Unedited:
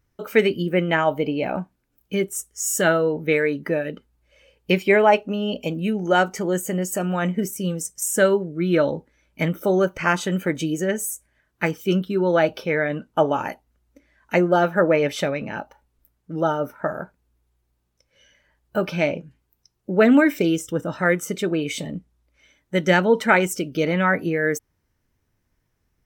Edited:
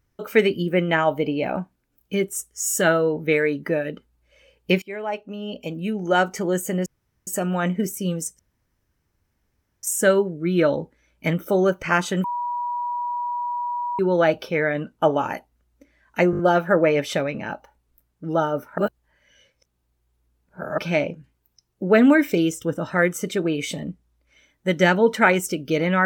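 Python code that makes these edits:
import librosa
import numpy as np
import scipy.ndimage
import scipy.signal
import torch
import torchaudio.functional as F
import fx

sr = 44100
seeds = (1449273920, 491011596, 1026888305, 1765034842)

y = fx.edit(x, sr, fx.fade_in_from(start_s=4.82, length_s=1.53, floor_db=-22.5),
    fx.insert_room_tone(at_s=6.86, length_s=0.41),
    fx.insert_room_tone(at_s=7.98, length_s=1.44),
    fx.bleep(start_s=10.39, length_s=1.75, hz=967.0, db=-23.5),
    fx.stutter(start_s=14.46, slice_s=0.02, count=5),
    fx.reverse_span(start_s=16.85, length_s=2.0), tone=tone)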